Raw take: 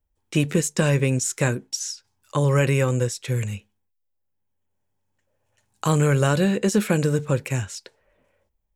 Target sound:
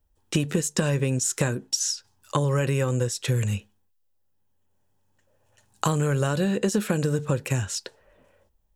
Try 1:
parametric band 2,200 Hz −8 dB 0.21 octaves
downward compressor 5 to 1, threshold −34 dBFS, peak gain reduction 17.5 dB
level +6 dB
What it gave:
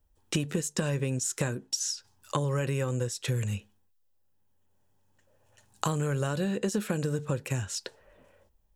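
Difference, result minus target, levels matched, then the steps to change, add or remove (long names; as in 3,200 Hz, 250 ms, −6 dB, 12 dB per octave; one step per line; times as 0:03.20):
downward compressor: peak gain reduction +5.5 dB
change: downward compressor 5 to 1, threshold −27 dBFS, peak gain reduction 11.5 dB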